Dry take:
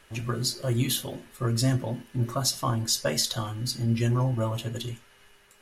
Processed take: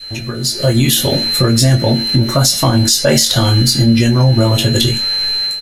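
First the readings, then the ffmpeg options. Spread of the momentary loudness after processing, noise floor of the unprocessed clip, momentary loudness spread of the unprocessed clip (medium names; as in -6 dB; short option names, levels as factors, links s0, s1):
3 LU, -58 dBFS, 8 LU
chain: -filter_complex "[0:a]aeval=exprs='val(0)+0.00708*sin(2*PI*4100*n/s)':c=same,asplit=2[s0][s1];[s1]asoftclip=type=tanh:threshold=0.0473,volume=0.251[s2];[s0][s2]amix=inputs=2:normalize=0,equalizer=f=1100:t=o:w=0.36:g=-9,acompressor=threshold=0.02:ratio=3,asplit=2[s3][s4];[s4]adelay=21,volume=0.501[s5];[s3][s5]amix=inputs=2:normalize=0,adynamicequalizer=threshold=0.00355:dfrequency=660:dqfactor=1:tfrequency=660:tqfactor=1:attack=5:release=100:ratio=0.375:range=1.5:mode=cutabove:tftype=bell,dynaudnorm=f=390:g=3:m=4.73,alimiter=level_in=3.98:limit=0.891:release=50:level=0:latency=1,volume=0.891"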